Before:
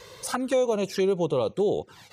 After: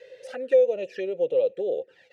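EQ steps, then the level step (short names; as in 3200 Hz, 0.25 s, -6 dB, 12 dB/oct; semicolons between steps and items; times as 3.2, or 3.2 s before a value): vowel filter e; +6.5 dB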